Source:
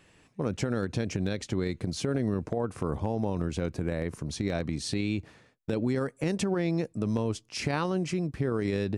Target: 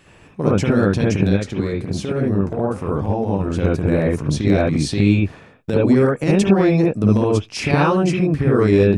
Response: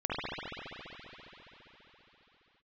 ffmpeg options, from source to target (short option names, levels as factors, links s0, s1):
-filter_complex "[0:a]asettb=1/sr,asplit=3[s0][s1][s2];[s0]atrim=end=1.304[s3];[s1]atrim=start=1.3:end=3.57,asetpts=PTS-STARTPTS,afade=t=in:d=0.004:c=qsin,afade=t=out:st=2.266:d=0.004:c=qsin,flanger=delay=8.4:depth=9.9:regen=-78:speed=1.2:shape=triangular[s4];[s2]atrim=start=3.566[s5];[s3][s4]acrossfade=d=0.004:c1=hsin:c2=qsin[s6];[s6][s5]acrossfade=d=0.004:c1=qsin:c2=hsin[s7];[1:a]atrim=start_sample=2205,atrim=end_sample=3528[s8];[s7][s8]afir=irnorm=-1:irlink=0,volume=2.82"